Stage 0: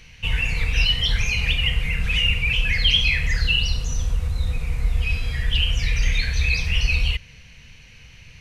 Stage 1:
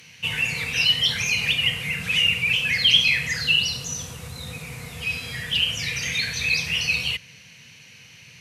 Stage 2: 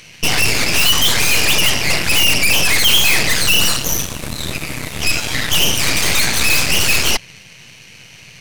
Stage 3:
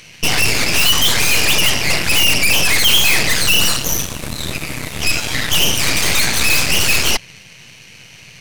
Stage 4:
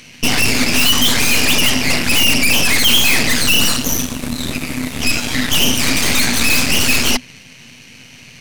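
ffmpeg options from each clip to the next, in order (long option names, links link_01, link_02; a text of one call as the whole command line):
ffmpeg -i in.wav -af "highpass=frequency=120:width=0.5412,highpass=frequency=120:width=1.3066,aemphasis=mode=production:type=cd" out.wav
ffmpeg -i in.wav -af "asoftclip=type=tanh:threshold=-14dB,aeval=exprs='0.2*(cos(1*acos(clip(val(0)/0.2,-1,1)))-cos(1*PI/2))+0.0891*(cos(8*acos(clip(val(0)/0.2,-1,1)))-cos(8*PI/2))':channel_layout=same,volume=6dB" out.wav
ffmpeg -i in.wav -af anull out.wav
ffmpeg -i in.wav -af "equalizer=frequency=250:width=5.4:gain=15" out.wav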